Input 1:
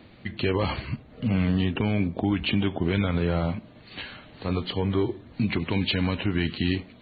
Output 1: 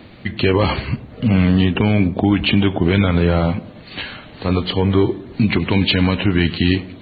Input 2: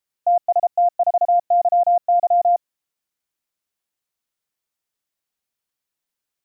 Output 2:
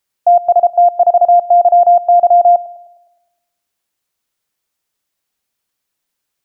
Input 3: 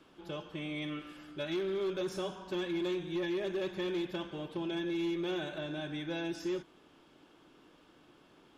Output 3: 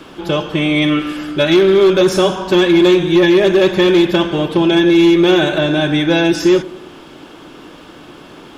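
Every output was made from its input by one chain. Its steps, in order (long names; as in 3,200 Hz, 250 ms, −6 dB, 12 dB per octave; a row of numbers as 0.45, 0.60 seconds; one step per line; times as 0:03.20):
feedback echo with a low-pass in the loop 103 ms, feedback 58%, low-pass 1,100 Hz, level −18 dB
normalise the peak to −3 dBFS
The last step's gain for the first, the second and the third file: +9.5, +8.5, +24.0 decibels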